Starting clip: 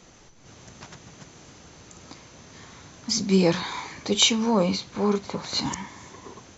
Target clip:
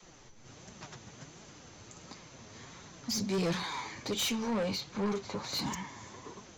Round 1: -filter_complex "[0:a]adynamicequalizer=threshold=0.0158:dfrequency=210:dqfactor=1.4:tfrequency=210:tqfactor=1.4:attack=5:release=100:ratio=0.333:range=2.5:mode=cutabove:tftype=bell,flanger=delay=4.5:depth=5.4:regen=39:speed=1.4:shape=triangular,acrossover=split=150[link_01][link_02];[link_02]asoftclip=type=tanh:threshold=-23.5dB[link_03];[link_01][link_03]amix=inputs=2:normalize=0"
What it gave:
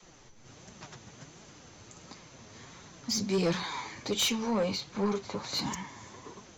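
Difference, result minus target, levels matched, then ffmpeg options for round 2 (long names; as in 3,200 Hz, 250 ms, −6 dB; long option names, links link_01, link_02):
soft clipping: distortion −4 dB
-filter_complex "[0:a]adynamicequalizer=threshold=0.0158:dfrequency=210:dqfactor=1.4:tfrequency=210:tqfactor=1.4:attack=5:release=100:ratio=0.333:range=2.5:mode=cutabove:tftype=bell,flanger=delay=4.5:depth=5.4:regen=39:speed=1.4:shape=triangular,acrossover=split=150[link_01][link_02];[link_02]asoftclip=type=tanh:threshold=-29.5dB[link_03];[link_01][link_03]amix=inputs=2:normalize=0"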